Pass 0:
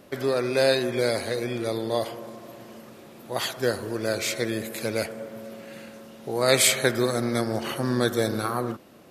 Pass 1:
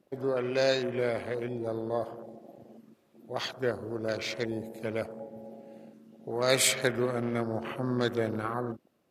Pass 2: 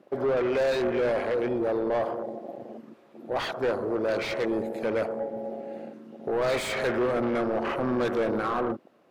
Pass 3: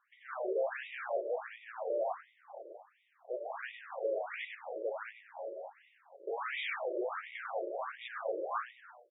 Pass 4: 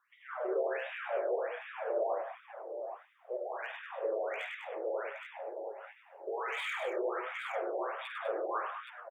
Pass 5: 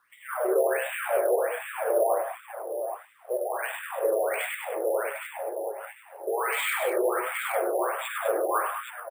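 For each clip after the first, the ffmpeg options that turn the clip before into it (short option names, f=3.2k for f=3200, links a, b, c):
-af "afwtdn=0.02,volume=-5dB"
-filter_complex "[0:a]asplit=2[a][b];[b]highpass=f=720:p=1,volume=30dB,asoftclip=type=tanh:threshold=-9.5dB[c];[a][c]amix=inputs=2:normalize=0,lowpass=f=1k:p=1,volume=-6dB,volume=-6dB"
-filter_complex "[0:a]lowshelf=f=500:g=-9.5,asplit=6[a][b][c][d][e][f];[b]adelay=97,afreqshift=86,volume=-5.5dB[g];[c]adelay=194,afreqshift=172,volume=-13.5dB[h];[d]adelay=291,afreqshift=258,volume=-21.4dB[i];[e]adelay=388,afreqshift=344,volume=-29.4dB[j];[f]adelay=485,afreqshift=430,volume=-37.3dB[k];[a][g][h][i][j][k]amix=inputs=6:normalize=0,afftfilt=real='re*between(b*sr/1024,440*pow(2700/440,0.5+0.5*sin(2*PI*1.4*pts/sr))/1.41,440*pow(2700/440,0.5+0.5*sin(2*PI*1.4*pts/sr))*1.41)':imag='im*between(b*sr/1024,440*pow(2700/440,0.5+0.5*sin(2*PI*1.4*pts/sr))/1.41,440*pow(2700/440,0.5+0.5*sin(2*PI*1.4*pts/sr))*1.41)':win_size=1024:overlap=0.75,volume=-2.5dB"
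-filter_complex "[0:a]acrossover=split=670|1900[a][b][c];[c]asoftclip=type=hard:threshold=-39dB[d];[a][b][d]amix=inputs=3:normalize=0,aecho=1:1:48|100|199|228|820:0.335|0.473|0.355|0.1|0.422"
-af "acrusher=samples=4:mix=1:aa=0.000001,volume=9dB"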